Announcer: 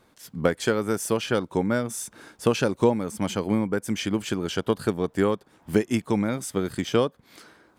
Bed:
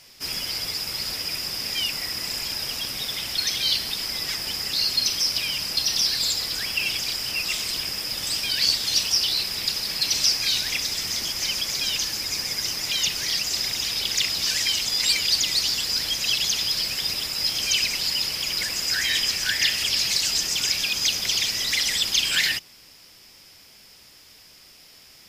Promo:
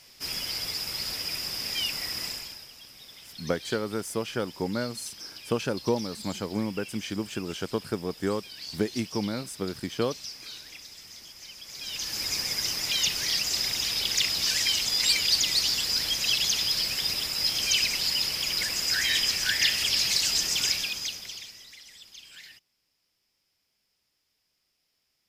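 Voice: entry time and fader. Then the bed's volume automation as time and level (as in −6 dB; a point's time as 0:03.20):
3.05 s, −6.0 dB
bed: 0:02.25 −3.5 dB
0:02.70 −19 dB
0:11.58 −19 dB
0:12.22 −2 dB
0:20.68 −2 dB
0:21.78 −26 dB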